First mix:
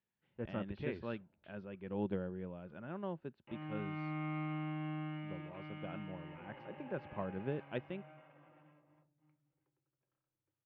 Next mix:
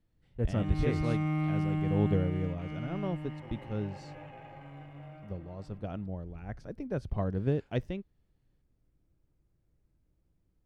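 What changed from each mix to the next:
background: entry −2.95 s
master: remove loudspeaker in its box 280–2,800 Hz, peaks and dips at 280 Hz −7 dB, 450 Hz −8 dB, 700 Hz −8 dB, 1,200 Hz −3 dB, 2,000 Hz −5 dB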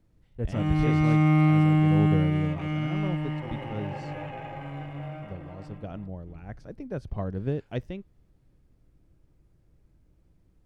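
background +10.5 dB

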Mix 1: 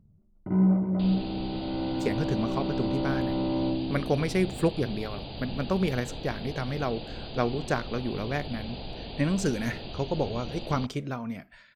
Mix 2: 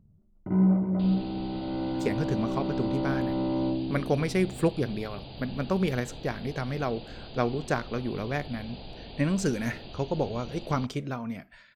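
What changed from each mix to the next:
second sound −4.5 dB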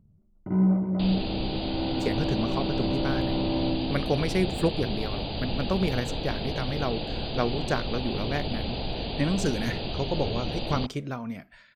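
second sound +11.5 dB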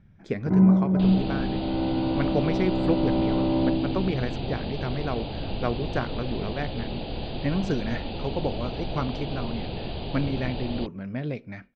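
speech: entry −1.75 s
first sound +4.5 dB
master: add high-frequency loss of the air 190 metres

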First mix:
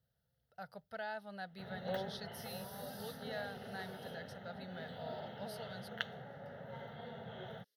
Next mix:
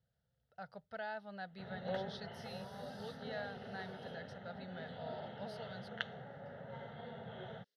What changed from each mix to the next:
master: add high-frequency loss of the air 89 metres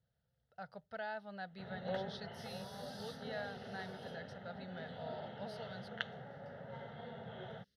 speech: send +7.0 dB
second sound: remove four-pole ladder high-pass 340 Hz, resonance 30%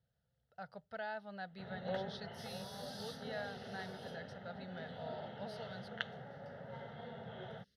second sound +3.5 dB

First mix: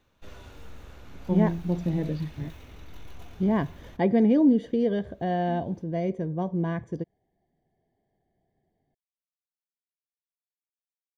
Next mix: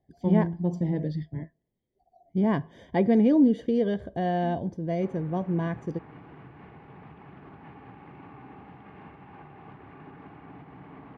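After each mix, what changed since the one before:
speech: entry −1.05 s
first sound: muted
second sound: unmuted
reverb: on, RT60 0.95 s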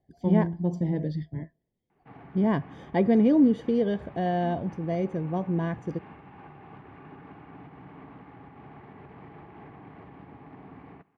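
background: entry −2.95 s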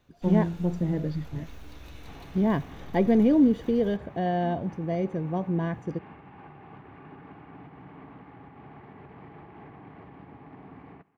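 first sound: unmuted

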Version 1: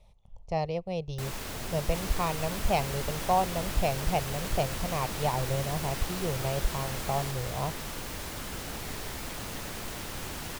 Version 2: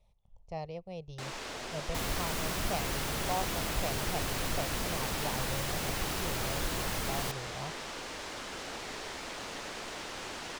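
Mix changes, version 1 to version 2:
speech −9.5 dB
first sound: add three-way crossover with the lows and the highs turned down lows −14 dB, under 270 Hz, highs −22 dB, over 7,900 Hz
second sound +4.5 dB

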